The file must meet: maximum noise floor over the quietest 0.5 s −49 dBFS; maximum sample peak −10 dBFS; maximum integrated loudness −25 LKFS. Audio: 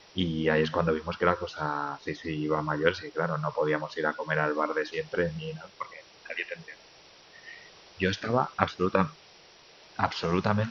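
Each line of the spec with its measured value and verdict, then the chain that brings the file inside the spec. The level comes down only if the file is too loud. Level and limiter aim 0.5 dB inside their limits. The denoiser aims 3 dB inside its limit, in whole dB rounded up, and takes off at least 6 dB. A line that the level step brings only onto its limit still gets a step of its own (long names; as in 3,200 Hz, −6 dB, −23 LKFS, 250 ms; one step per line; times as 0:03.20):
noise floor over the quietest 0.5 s −55 dBFS: in spec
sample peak −3.0 dBFS: out of spec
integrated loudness −29.5 LKFS: in spec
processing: brickwall limiter −10.5 dBFS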